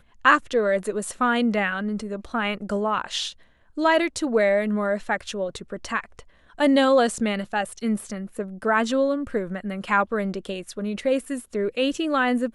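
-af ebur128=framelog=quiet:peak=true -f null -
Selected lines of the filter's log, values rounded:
Integrated loudness:
  I:         -24.0 LUFS
  Threshold: -34.2 LUFS
Loudness range:
  LRA:         2.5 LU
  Threshold: -44.4 LUFS
  LRA low:   -25.6 LUFS
  LRA high:  -23.2 LUFS
True peak:
  Peak:       -4.1 dBFS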